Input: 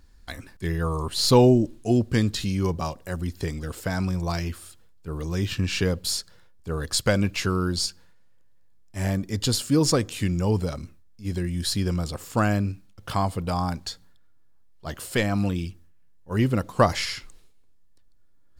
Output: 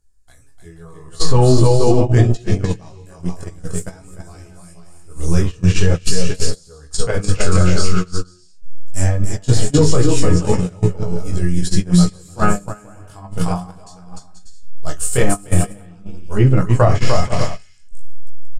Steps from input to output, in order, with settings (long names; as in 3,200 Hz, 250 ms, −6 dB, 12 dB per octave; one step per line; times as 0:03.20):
treble cut that deepens with the level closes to 2,700 Hz, closed at −20.5 dBFS
octave-band graphic EQ 250/500/1,000/2,000/4,000/8,000 Hz −10/−3/−6/−7/−11/+11 dB
on a send: bouncing-ball delay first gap 300 ms, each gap 0.6×, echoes 5
on the sum: multi-voice chorus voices 2, 0.46 Hz, delay 19 ms, depth 4.9 ms
low-shelf EQ 110 Hz −4 dB
tuned comb filter 420 Hz, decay 0.34 s, harmonics all, mix 70%
rectangular room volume 180 cubic metres, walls furnished, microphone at 0.57 metres
noise gate −36 dBFS, range −24 dB
boost into a limiter +29.5 dB
level −1 dB